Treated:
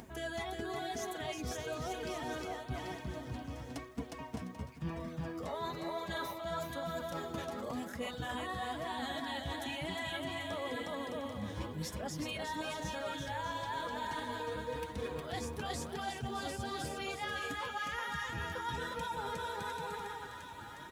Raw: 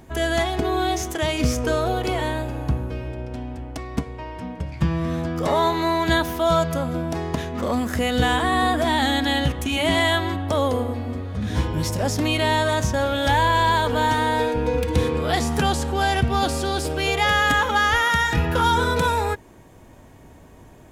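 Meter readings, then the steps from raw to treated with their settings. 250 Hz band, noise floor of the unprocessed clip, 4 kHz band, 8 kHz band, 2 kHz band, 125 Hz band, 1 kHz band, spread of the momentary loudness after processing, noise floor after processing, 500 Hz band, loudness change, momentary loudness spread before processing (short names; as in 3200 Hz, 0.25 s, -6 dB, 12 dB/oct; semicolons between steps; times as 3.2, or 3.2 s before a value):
-17.5 dB, -47 dBFS, -17.0 dB, -15.0 dB, -17.5 dB, -19.5 dB, -17.5 dB, 5 LU, -48 dBFS, -17.0 dB, -18.0 dB, 11 LU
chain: reverb removal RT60 1.8 s; split-band echo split 750 Hz, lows 0.22 s, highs 0.706 s, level -16 dB; upward compressor, threshold -36 dBFS; on a send: bouncing-ball echo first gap 0.36 s, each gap 0.7×, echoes 5; on the sum: flange 1 Hz, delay 4 ms, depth 6.9 ms, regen +38%; reverse; compressor 6:1, threshold -32 dBFS, peak gain reduction 14.5 dB; reverse; bit-crush 11-bit; HPF 51 Hz; gain -4.5 dB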